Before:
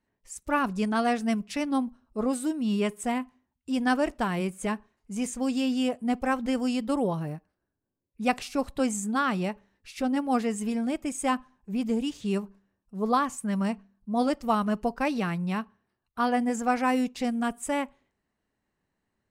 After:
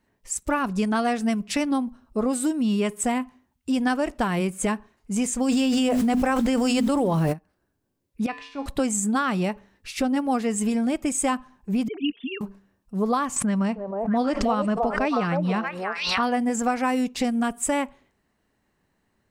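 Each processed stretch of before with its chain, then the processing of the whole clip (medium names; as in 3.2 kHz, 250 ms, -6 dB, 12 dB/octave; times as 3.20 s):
5.48–7.32 s: hum notches 50/100/150/200/250/300 Hz + added noise pink -59 dBFS + level flattener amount 100%
8.26–8.66 s: low-pass 3.5 kHz + bass shelf 350 Hz -8.5 dB + feedback comb 92 Hz, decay 0.72 s, harmonics odd, mix 80%
11.88–12.41 s: formants replaced by sine waves + high-order bell 630 Hz -12.5 dB 2.7 oct + comb 4.3 ms, depth 72%
13.36–16.23 s: distance through air 76 m + repeats whose band climbs or falls 315 ms, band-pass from 560 Hz, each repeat 1.4 oct, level -0.5 dB + swell ahead of each attack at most 74 dB/s
whole clip: dynamic bell 7.7 kHz, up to +5 dB, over -53 dBFS, Q 5.2; compression 4:1, threshold -30 dBFS; trim +9 dB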